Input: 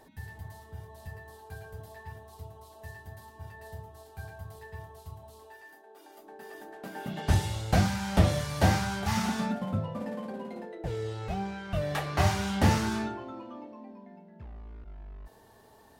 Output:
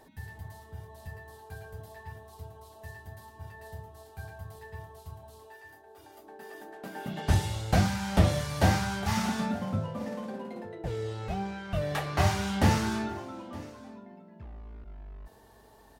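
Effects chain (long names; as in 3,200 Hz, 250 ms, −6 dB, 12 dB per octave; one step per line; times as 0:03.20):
single-tap delay 914 ms −21 dB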